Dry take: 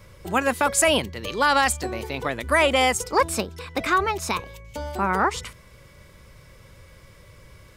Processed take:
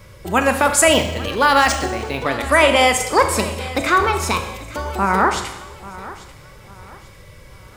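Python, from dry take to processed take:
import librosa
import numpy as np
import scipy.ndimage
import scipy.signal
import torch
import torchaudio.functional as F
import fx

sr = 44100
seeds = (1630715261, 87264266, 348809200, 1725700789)

p1 = x + fx.echo_feedback(x, sr, ms=841, feedback_pct=35, wet_db=-17.5, dry=0)
p2 = fx.rev_schroeder(p1, sr, rt60_s=0.95, comb_ms=25, drr_db=6.5)
p3 = fx.resample_linear(p2, sr, factor=3, at=(0.93, 2.26))
y = F.gain(torch.from_numpy(p3), 5.0).numpy()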